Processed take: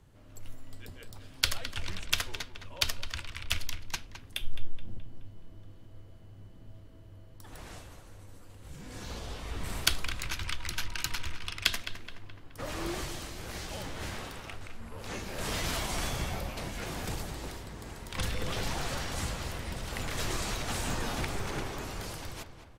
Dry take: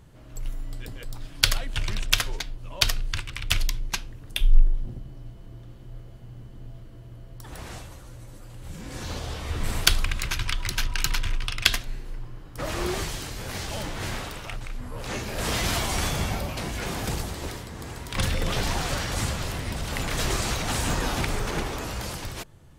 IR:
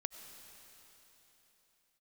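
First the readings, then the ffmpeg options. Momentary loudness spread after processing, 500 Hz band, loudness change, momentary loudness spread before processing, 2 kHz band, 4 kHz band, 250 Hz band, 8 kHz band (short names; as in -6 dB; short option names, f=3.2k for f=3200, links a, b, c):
22 LU, -6.5 dB, -7.0 dB, 21 LU, -6.5 dB, -7.0 dB, -7.0 dB, -7.0 dB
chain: -filter_complex "[0:a]afreqshift=-19,asplit=2[a][b];[b]adelay=212,lowpass=f=3.4k:p=1,volume=-10dB,asplit=2[c][d];[d]adelay=212,lowpass=f=3.4k:p=1,volume=0.54,asplit=2[e][f];[f]adelay=212,lowpass=f=3.4k:p=1,volume=0.54,asplit=2[g][h];[h]adelay=212,lowpass=f=3.4k:p=1,volume=0.54,asplit=2[i][j];[j]adelay=212,lowpass=f=3.4k:p=1,volume=0.54,asplit=2[k][l];[l]adelay=212,lowpass=f=3.4k:p=1,volume=0.54[m];[c][e][g][i][k][m]amix=inputs=6:normalize=0[n];[a][n]amix=inputs=2:normalize=0,volume=-7dB"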